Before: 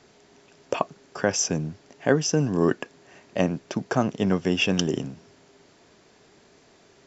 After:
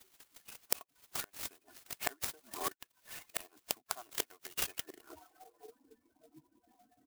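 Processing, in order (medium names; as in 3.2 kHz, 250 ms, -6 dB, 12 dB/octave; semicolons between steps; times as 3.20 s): harmonic-percussive separation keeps percussive; comb 2.8 ms, depth 90%; spectral noise reduction 19 dB; inverted gate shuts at -17 dBFS, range -28 dB; 0.73–1.43 s: compression 8:1, threshold -42 dBFS, peak gain reduction 18.5 dB; 3.44–4.08 s: peaking EQ 970 Hz +8 dB 1.6 oct; band-pass sweep 4.8 kHz -> 200 Hz, 4.47–5.97 s; 2.10–2.65 s: peaking EQ 3.2 kHz -12 dB 1 oct; sampling jitter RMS 0.08 ms; trim +18 dB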